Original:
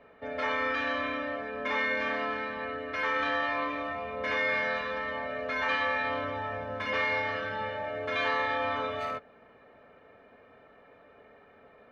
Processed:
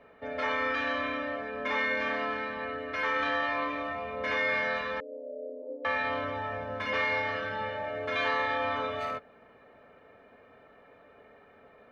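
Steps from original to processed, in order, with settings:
0:05.00–0:05.85: Chebyshev band-pass filter 270–590 Hz, order 4

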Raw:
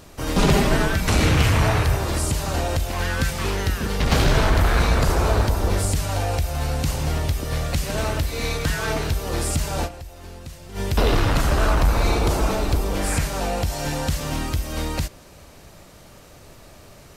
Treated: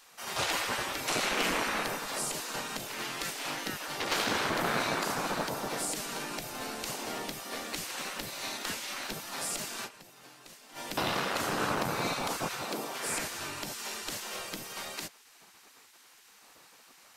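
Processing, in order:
gate on every frequency bin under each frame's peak −15 dB weak
0:12.63–0:13.06: high-pass filter 180 Hz 24 dB per octave
level −5.5 dB

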